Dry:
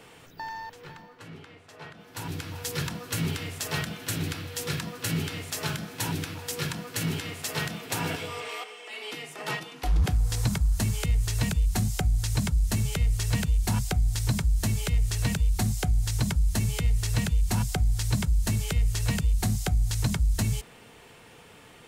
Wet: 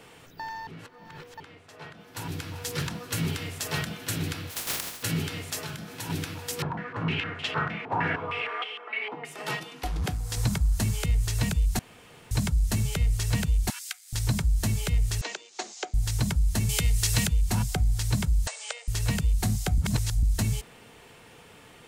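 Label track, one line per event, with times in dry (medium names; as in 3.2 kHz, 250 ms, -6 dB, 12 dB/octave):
0.670000	1.400000	reverse
2.500000	3.110000	loudspeaker Doppler distortion depth 0.13 ms
4.490000	5.020000	spectral contrast reduction exponent 0.13
5.600000	6.100000	compression 2:1, threshold -37 dBFS
6.620000	9.250000	step-sequenced low-pass 6.5 Hz 920–3100 Hz
9.870000	10.370000	bass shelf 81 Hz -12 dB
11.790000	12.310000	room tone
13.700000	14.130000	high-pass 1.5 kHz 24 dB/octave
15.210000	15.940000	Chebyshev band-pass 340–6900 Hz, order 4
16.690000	17.270000	treble shelf 2.1 kHz +9.5 dB
18.470000	18.880000	brick-wall FIR band-pass 450–9200 Hz
19.780000	20.230000	reverse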